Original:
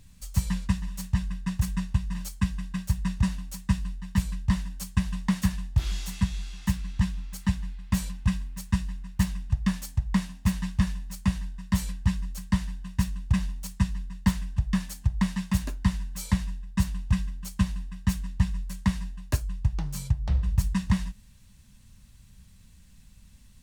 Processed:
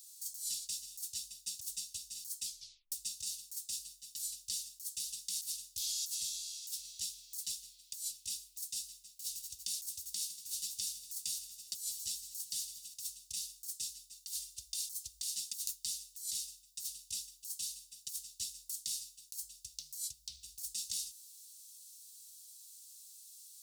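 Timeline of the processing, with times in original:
2.45 s: tape stop 0.47 s
9.03–12.94 s: multi-head delay 79 ms, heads second and third, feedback 57%, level -19 dB
14.12–15.30 s: comb 2.5 ms, depth 63%
whole clip: inverse Chebyshev high-pass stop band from 1.7 kHz, stop band 50 dB; treble shelf 8.6 kHz +8.5 dB; compressor with a negative ratio -44 dBFS, ratio -1; trim +4 dB

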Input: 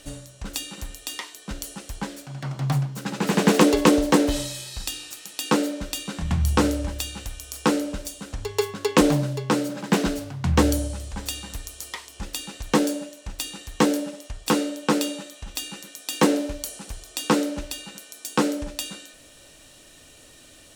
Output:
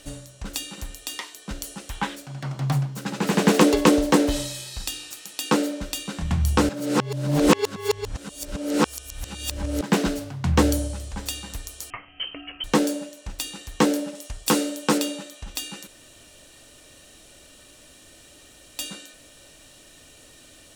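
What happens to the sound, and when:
1.90–2.15 s: time-frequency box 760–4000 Hz +8 dB
6.69–9.81 s: reverse
11.90–12.64 s: frequency inversion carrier 3.1 kHz
14.15–14.98 s: treble shelf 5.8 kHz +8 dB
15.87–18.79 s: room tone

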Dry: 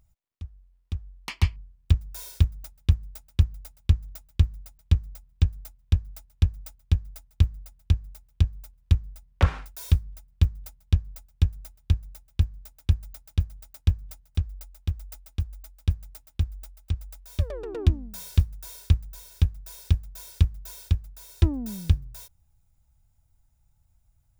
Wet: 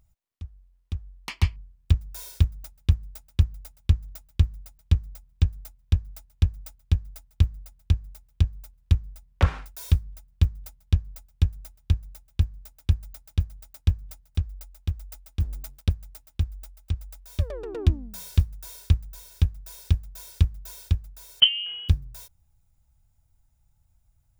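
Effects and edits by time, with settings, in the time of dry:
15.40–15.89 s: waveshaping leveller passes 2
21.40–21.89 s: frequency inversion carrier 3.1 kHz

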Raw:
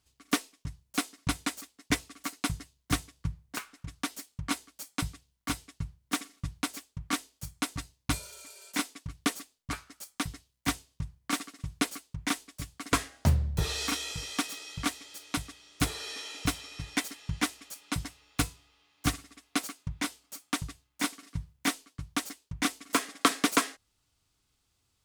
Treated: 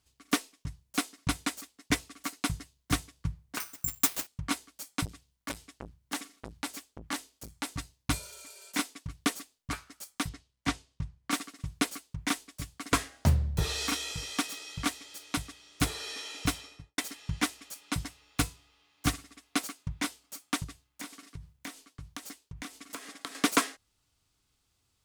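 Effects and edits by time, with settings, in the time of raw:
3.60–4.27 s: careless resampling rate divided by 6×, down none, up zero stuff
5.05–7.72 s: transformer saturation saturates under 2.2 kHz
10.29–11.31 s: distance through air 60 m
16.54–16.98 s: studio fade out
20.64–23.35 s: compression, threshold -38 dBFS

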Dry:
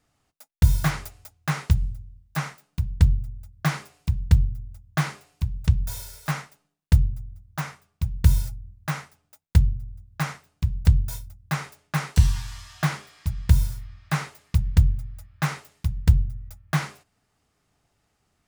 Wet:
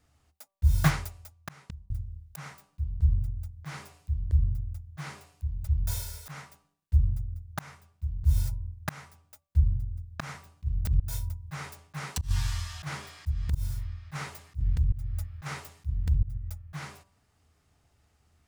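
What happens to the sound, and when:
0.80–1.90 s: fade out
10.23–13.55 s: compressor with a negative ratio -21 dBFS, ratio -0.5
14.15–16.38 s: compressor with a negative ratio -24 dBFS
whole clip: peaking EQ 75 Hz +14 dB 0.55 oct; de-hum 194 Hz, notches 6; slow attack 246 ms

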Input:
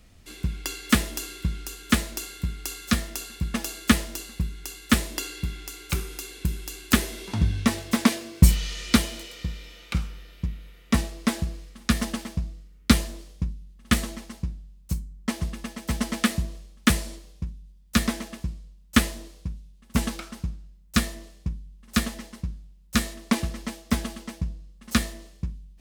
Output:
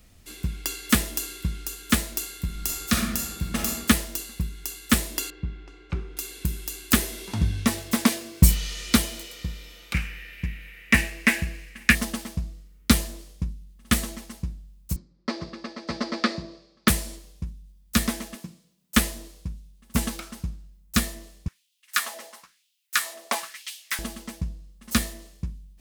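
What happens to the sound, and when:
2.45–3.74 s: reverb throw, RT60 0.93 s, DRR 0.5 dB
5.30–6.17 s: tape spacing loss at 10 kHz 40 dB
9.94–11.95 s: high-order bell 2.1 kHz +15.5 dB 1 oct
14.96–16.88 s: cabinet simulation 160–4800 Hz, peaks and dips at 200 Hz -4 dB, 350 Hz +8 dB, 570 Hz +7 dB, 1.2 kHz +5 dB, 3 kHz -7 dB, 4.7 kHz +9 dB
18.35–18.97 s: high-pass 160 Hz 24 dB/octave
21.48–23.99 s: LFO high-pass sine 1 Hz 600–3100 Hz
whole clip: treble shelf 9.2 kHz +10 dB; trim -1 dB

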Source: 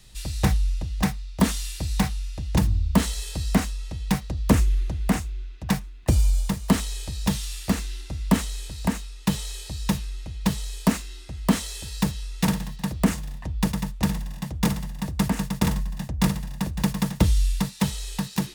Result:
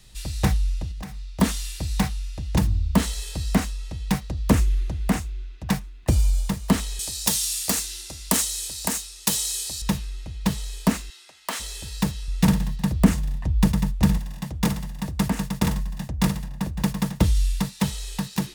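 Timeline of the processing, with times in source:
0.91–1.34 s: compression 16:1, threshold -30 dBFS
6.99–9.82 s: tone controls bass -11 dB, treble +14 dB
11.10–11.60 s: high-pass 800 Hz
12.28–14.18 s: bass shelf 200 Hz +8.5 dB
16.47–17.35 s: tape noise reduction on one side only decoder only

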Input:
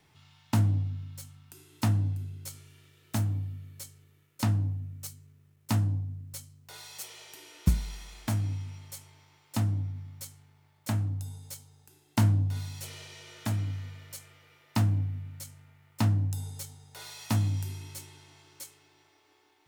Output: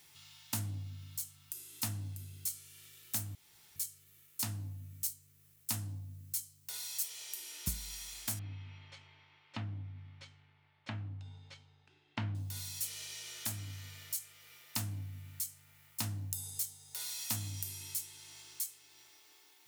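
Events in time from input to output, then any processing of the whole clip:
3.35–3.76 s: room tone
8.39–12.35 s: low-pass 3 kHz 24 dB/octave
whole clip: pre-emphasis filter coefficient 0.9; compression 1.5:1, threshold -59 dBFS; trim +12 dB

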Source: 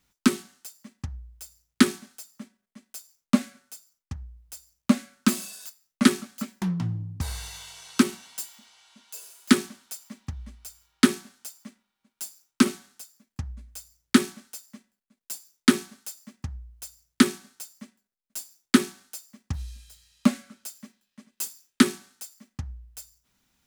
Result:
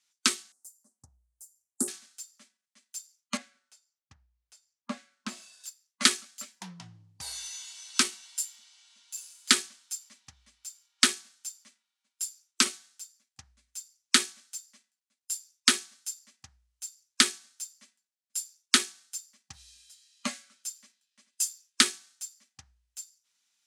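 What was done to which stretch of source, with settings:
0.52–1.88 s: Chebyshev band-stop 680–9200 Hz
3.37–5.64 s: low-pass 1.5 kHz 6 dB/octave
whole clip: frequency weighting ITU-R 468; spectral noise reduction 7 dB; trim -4.5 dB

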